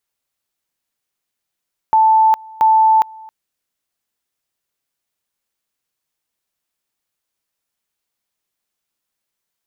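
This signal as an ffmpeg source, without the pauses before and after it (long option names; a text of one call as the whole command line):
ffmpeg -f lavfi -i "aevalsrc='pow(10,(-8-25.5*gte(mod(t,0.68),0.41))/20)*sin(2*PI*880*t)':duration=1.36:sample_rate=44100" out.wav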